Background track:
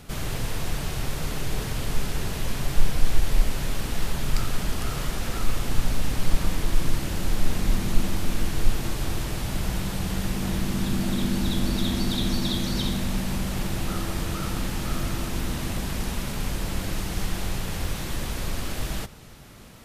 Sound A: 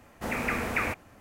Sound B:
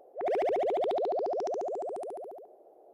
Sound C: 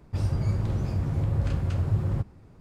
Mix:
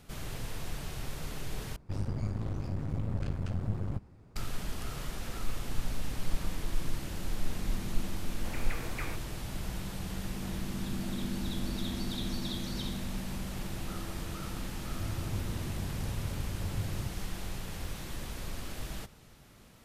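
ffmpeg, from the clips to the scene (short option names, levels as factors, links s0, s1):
-filter_complex "[3:a]asplit=2[s0][s1];[0:a]volume=0.316[s2];[s0]aeval=exprs='clip(val(0),-1,0.0126)':c=same[s3];[s2]asplit=2[s4][s5];[s4]atrim=end=1.764[s6];[s3]atrim=end=2.6,asetpts=PTS-STARTPTS,volume=0.596[s7];[s5]atrim=start=4.356[s8];[1:a]atrim=end=1.2,asetpts=PTS-STARTPTS,volume=0.224,afade=t=in:d=0.004:c=hsin,afade=t=out:st=1.196:d=0.004:c=hsin,adelay=8220[s9];[s1]atrim=end=2.6,asetpts=PTS-STARTPTS,volume=0.266,afade=t=in:d=0.004:c=hsin,afade=t=out:st=2.596:d=0.004:c=hsin,adelay=14860[s10];[s6][s7]acrossfade=d=0.004:c1=hsin:c2=hsin[s11];[s11][s8]acrossfade=d=0.004:c1=hsin:c2=hsin[s12];[s12][s9][s10]amix=inputs=3:normalize=0"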